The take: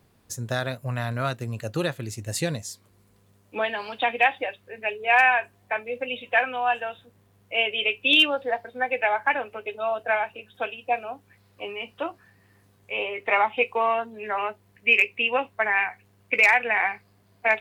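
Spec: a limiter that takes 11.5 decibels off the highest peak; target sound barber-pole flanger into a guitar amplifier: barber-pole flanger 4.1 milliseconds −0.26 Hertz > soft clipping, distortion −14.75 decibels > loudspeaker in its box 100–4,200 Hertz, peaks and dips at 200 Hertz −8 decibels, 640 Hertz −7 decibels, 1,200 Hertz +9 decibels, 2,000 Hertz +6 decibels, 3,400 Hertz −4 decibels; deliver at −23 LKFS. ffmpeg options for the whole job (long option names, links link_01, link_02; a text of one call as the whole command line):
ffmpeg -i in.wav -filter_complex "[0:a]alimiter=limit=-20dB:level=0:latency=1,asplit=2[link_01][link_02];[link_02]adelay=4.1,afreqshift=-0.26[link_03];[link_01][link_03]amix=inputs=2:normalize=1,asoftclip=threshold=-27.5dB,highpass=100,equalizer=frequency=200:width_type=q:width=4:gain=-8,equalizer=frequency=640:width_type=q:width=4:gain=-7,equalizer=frequency=1200:width_type=q:width=4:gain=9,equalizer=frequency=2000:width_type=q:width=4:gain=6,equalizer=frequency=3400:width_type=q:width=4:gain=-4,lowpass=frequency=4200:width=0.5412,lowpass=frequency=4200:width=1.3066,volume=12dB" out.wav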